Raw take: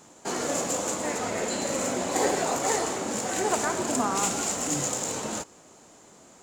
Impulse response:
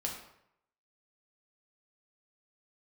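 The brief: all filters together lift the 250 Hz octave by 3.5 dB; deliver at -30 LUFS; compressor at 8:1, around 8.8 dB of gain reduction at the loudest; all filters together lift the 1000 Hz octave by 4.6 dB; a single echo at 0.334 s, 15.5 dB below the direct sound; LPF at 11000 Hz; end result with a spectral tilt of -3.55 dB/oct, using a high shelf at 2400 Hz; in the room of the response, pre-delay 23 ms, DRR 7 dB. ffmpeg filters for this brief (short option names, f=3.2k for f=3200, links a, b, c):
-filter_complex "[0:a]lowpass=11k,equalizer=f=250:t=o:g=4,equalizer=f=1k:t=o:g=6.5,highshelf=f=2.4k:g=-4,acompressor=threshold=-27dB:ratio=8,aecho=1:1:334:0.168,asplit=2[a][b];[1:a]atrim=start_sample=2205,adelay=23[c];[b][c]afir=irnorm=-1:irlink=0,volume=-9dB[d];[a][d]amix=inputs=2:normalize=0"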